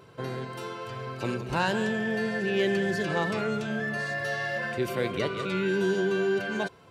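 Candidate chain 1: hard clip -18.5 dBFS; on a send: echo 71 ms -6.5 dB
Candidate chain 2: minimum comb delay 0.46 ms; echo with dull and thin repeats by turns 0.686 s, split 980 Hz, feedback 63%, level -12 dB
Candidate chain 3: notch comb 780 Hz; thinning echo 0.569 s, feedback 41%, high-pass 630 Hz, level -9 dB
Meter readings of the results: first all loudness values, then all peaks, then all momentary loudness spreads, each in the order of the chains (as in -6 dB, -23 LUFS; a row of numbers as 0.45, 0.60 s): -28.0, -30.0, -29.5 LUFS; -15.0, -14.0, -15.0 dBFS; 10, 10, 10 LU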